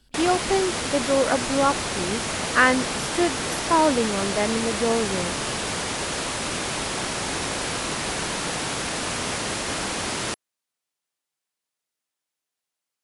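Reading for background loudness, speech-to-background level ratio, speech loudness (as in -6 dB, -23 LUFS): -26.5 LUFS, 2.5 dB, -24.0 LUFS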